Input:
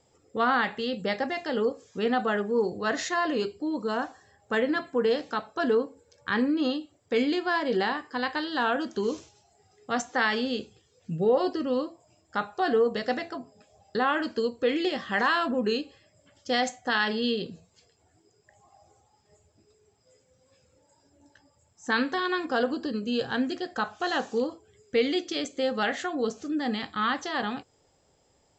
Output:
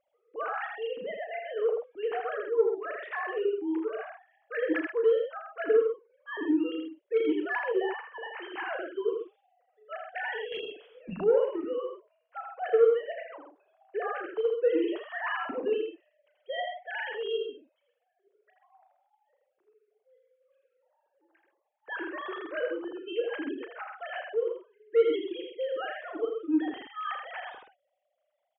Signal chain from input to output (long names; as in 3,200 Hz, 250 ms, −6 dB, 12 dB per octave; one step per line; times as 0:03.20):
three sine waves on the formant tracks
soft clipping −10 dBFS, distortion −22 dB
loudspeakers that aren't time-aligned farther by 12 metres −9 dB, 28 metres −5 dB, 45 metres −9 dB
0:10.52–0:11.24: every bin compressed towards the loudest bin 2 to 1
level −4 dB